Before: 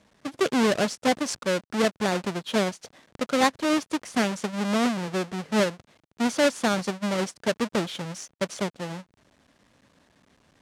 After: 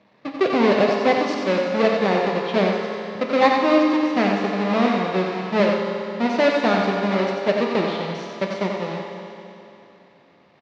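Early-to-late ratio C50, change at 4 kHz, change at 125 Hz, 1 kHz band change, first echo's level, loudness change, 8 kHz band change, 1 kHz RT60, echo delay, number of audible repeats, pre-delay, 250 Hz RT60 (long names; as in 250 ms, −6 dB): 0.5 dB, +1.5 dB, +4.5 dB, +7.0 dB, −6.0 dB, +5.5 dB, below −10 dB, 2.9 s, 91 ms, 1, 7 ms, 2.9 s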